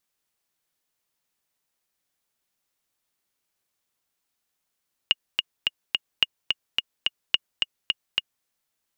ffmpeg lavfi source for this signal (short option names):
-f lavfi -i "aevalsrc='pow(10,(-4.5-4*gte(mod(t,4*60/215),60/215))/20)*sin(2*PI*2860*mod(t,60/215))*exp(-6.91*mod(t,60/215)/0.03)':d=3.34:s=44100"